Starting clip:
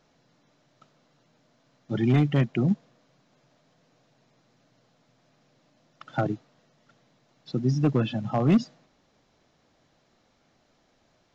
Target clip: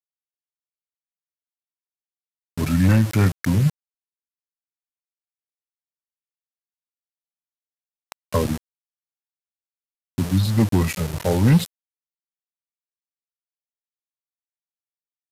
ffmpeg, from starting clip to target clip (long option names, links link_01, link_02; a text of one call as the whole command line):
ffmpeg -i in.wav -af "aeval=exprs='val(0)*gte(abs(val(0)),0.0224)':channel_layout=same,aemphasis=mode=production:type=cd,asetrate=32667,aresample=44100,volume=5dB" out.wav